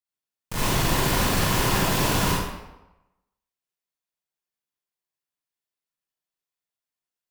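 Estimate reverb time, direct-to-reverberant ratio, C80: 0.95 s, -8.0 dB, 1.5 dB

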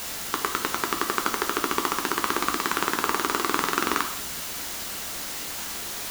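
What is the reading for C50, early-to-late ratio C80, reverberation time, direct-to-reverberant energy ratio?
9.5 dB, 12.5 dB, 0.60 s, 4.0 dB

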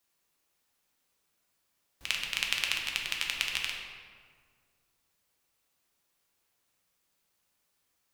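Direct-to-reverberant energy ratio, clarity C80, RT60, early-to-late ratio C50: -0.5 dB, 5.0 dB, 1.9 s, 3.0 dB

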